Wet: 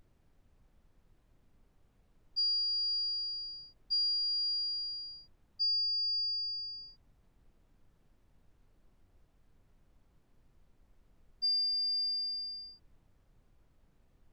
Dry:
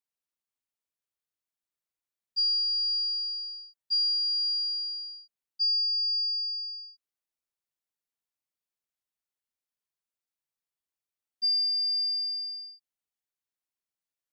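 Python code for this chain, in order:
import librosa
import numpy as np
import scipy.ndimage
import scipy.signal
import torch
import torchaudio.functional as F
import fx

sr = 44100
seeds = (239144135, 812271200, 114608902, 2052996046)

y = fx.dmg_noise_colour(x, sr, seeds[0], colour='brown', level_db=-59.0)
y = y * librosa.db_to_amplitude(-5.0)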